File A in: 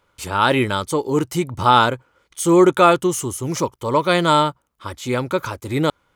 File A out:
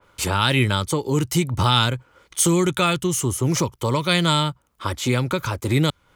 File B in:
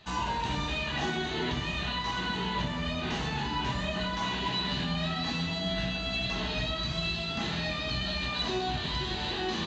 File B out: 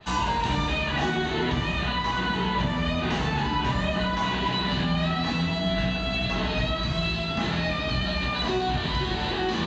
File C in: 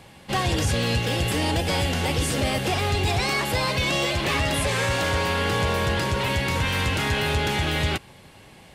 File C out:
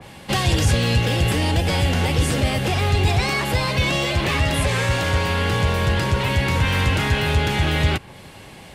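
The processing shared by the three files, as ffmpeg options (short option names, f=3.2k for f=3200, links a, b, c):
-filter_complex "[0:a]acrossover=split=170|2300[a][b][c];[b]acompressor=threshold=-29dB:ratio=10[d];[a][d][c]amix=inputs=3:normalize=0,adynamicequalizer=threshold=0.00708:dfrequency=2700:dqfactor=0.7:tfrequency=2700:tqfactor=0.7:attack=5:release=100:ratio=0.375:range=3.5:mode=cutabove:tftype=highshelf,volume=7dB"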